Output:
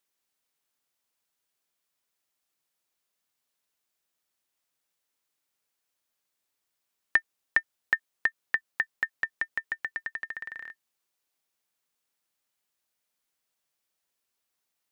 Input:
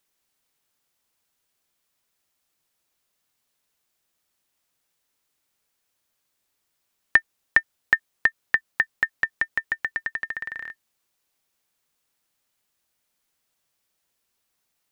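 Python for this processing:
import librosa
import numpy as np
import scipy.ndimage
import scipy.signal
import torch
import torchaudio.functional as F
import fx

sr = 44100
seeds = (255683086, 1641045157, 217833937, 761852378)

y = fx.low_shelf(x, sr, hz=160.0, db=-7.0)
y = F.gain(torch.from_numpy(y), -6.0).numpy()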